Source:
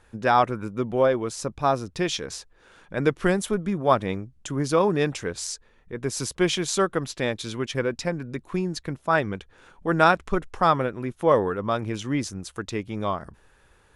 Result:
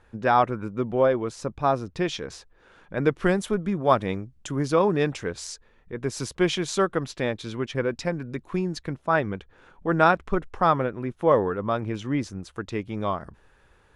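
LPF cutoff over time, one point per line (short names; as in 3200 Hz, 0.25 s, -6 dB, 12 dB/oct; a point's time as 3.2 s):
LPF 6 dB/oct
2700 Hz
from 3.12 s 4600 Hz
from 3.85 s 8500 Hz
from 4.65 s 4200 Hz
from 7.22 s 2500 Hz
from 7.89 s 5000 Hz
from 8.95 s 2400 Hz
from 12.72 s 4100 Hz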